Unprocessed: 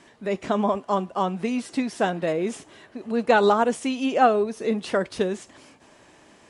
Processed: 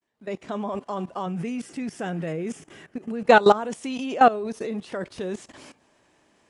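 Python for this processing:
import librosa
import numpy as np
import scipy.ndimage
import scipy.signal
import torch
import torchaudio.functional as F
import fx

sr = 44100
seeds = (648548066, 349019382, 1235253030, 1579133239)

y = fx.fade_in_head(x, sr, length_s=0.71)
y = fx.graphic_eq_31(y, sr, hz=(160, 630, 1000, 4000), db=(8, -5, -7, -11), at=(1.26, 3.26))
y = fx.level_steps(y, sr, step_db=17)
y = y * 10.0 ** (5.0 / 20.0)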